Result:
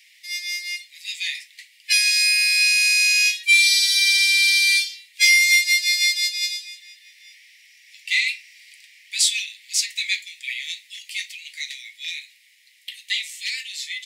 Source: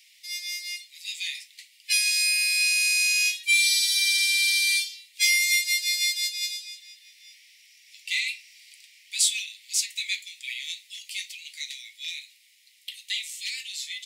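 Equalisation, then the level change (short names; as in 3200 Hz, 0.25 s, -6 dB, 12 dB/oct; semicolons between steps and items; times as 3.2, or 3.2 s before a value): dynamic EQ 4900 Hz, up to +5 dB, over -36 dBFS, Q 1.4; resonant high-pass 1700 Hz, resonance Q 3.6; 0.0 dB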